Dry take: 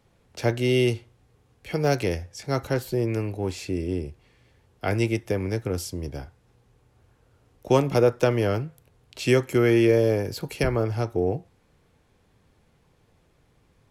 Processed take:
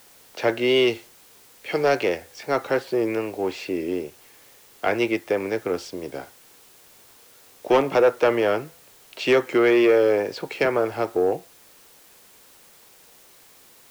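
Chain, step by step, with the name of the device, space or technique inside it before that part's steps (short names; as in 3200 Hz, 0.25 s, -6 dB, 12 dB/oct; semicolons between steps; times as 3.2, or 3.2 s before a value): tape answering machine (BPF 370–3300 Hz; soft clip -17 dBFS, distortion -15 dB; wow and flutter; white noise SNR 28 dB); 0.67–1.92 dynamic EQ 4600 Hz, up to +4 dB, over -49 dBFS, Q 1; gain +7 dB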